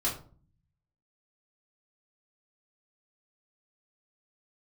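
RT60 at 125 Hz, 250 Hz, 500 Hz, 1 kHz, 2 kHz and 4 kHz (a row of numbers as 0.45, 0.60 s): 1.2, 0.80, 0.45, 0.40, 0.30, 0.25 s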